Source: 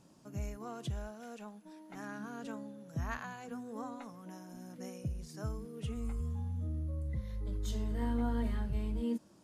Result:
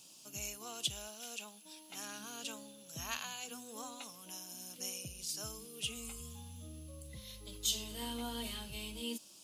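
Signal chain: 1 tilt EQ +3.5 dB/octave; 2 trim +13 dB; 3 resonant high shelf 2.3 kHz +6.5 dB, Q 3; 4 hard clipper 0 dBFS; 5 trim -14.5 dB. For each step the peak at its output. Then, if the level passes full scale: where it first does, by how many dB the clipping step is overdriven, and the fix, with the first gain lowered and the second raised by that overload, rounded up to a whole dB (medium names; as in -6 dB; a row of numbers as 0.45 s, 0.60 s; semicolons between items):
-23.0 dBFS, -10.0 dBFS, -4.0 dBFS, -4.0 dBFS, -18.5 dBFS; nothing clips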